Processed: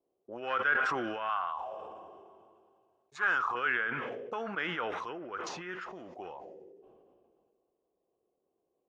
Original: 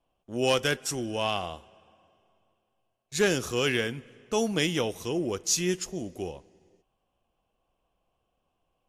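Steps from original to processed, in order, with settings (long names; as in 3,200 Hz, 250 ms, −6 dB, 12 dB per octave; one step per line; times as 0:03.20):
treble cut that deepens with the level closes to 2,300 Hz, closed at −27 dBFS
0:01.29–0:03.55: octave-band graphic EQ 125/250/500/1,000/2,000/8,000 Hz −5/−7/−9/+8/−4/+7 dB
envelope filter 390–1,400 Hz, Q 4.6, up, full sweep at −29 dBFS
level that may fall only so fast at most 26 dB per second
level +7.5 dB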